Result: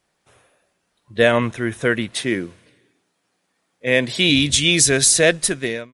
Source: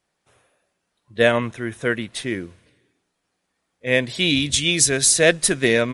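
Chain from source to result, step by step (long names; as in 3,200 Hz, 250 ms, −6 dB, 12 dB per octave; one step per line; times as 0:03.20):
fade-out on the ending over 0.87 s
in parallel at +3 dB: brickwall limiter −11 dBFS, peak gain reduction 9 dB
0:02.14–0:04.30: on the sum: high-pass filter 120 Hz 12 dB per octave
level −3 dB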